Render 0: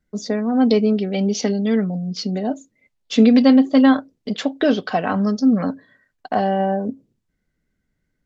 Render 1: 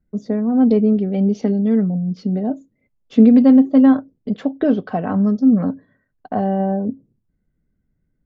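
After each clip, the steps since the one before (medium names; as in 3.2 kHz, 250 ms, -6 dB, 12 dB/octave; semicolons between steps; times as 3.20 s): FFT filter 150 Hz 0 dB, 1.3 kHz -11 dB, 5.1 kHz -24 dB; trim +5 dB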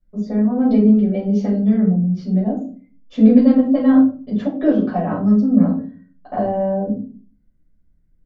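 simulated room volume 240 m³, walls furnished, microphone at 5.9 m; trim -10.5 dB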